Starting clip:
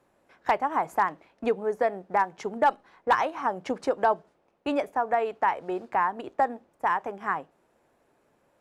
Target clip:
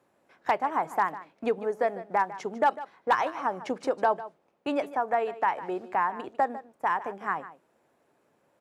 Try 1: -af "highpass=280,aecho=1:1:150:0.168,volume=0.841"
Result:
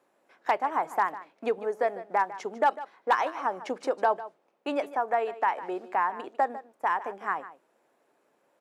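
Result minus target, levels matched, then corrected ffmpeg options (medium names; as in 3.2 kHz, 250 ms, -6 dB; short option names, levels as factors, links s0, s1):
125 Hz band -7.5 dB
-af "highpass=100,aecho=1:1:150:0.168,volume=0.841"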